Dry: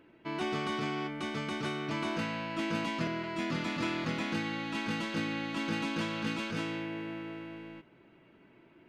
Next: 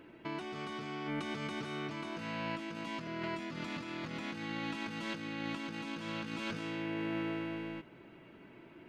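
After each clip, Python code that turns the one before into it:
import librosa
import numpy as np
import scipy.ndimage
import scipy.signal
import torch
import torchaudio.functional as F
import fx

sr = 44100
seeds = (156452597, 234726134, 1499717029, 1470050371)

y = fx.over_compress(x, sr, threshold_db=-40.0, ratio=-1.0)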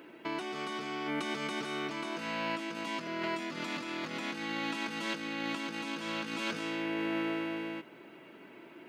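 y = scipy.signal.sosfilt(scipy.signal.butter(2, 250.0, 'highpass', fs=sr, output='sos'), x)
y = fx.high_shelf(y, sr, hz=7400.0, db=7.0)
y = y * 10.0 ** (4.5 / 20.0)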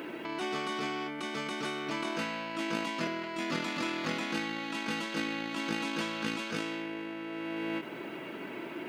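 y = fx.over_compress(x, sr, threshold_db=-42.0, ratio=-1.0)
y = fx.end_taper(y, sr, db_per_s=190.0)
y = y * 10.0 ** (6.5 / 20.0)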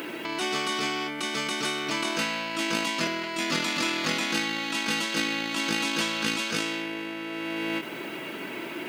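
y = fx.high_shelf(x, sr, hz=2800.0, db=11.5)
y = y * 10.0 ** (3.5 / 20.0)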